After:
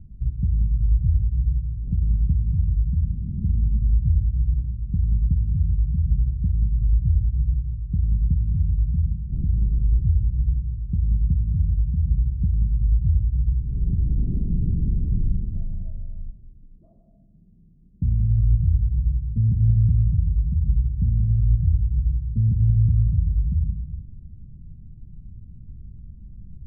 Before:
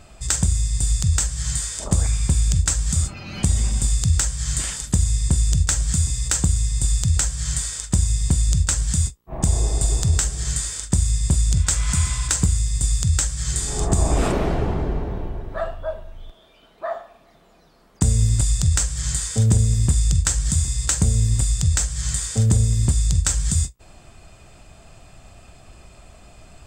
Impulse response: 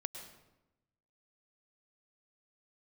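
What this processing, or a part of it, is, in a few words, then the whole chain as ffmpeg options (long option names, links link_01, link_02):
club heard from the street: -filter_complex "[0:a]alimiter=limit=-17.5dB:level=0:latency=1:release=182,lowpass=frequency=200:width=0.5412,lowpass=frequency=200:width=1.3066[link_01];[1:a]atrim=start_sample=2205[link_02];[link_01][link_02]afir=irnorm=-1:irlink=0,volume=8dB"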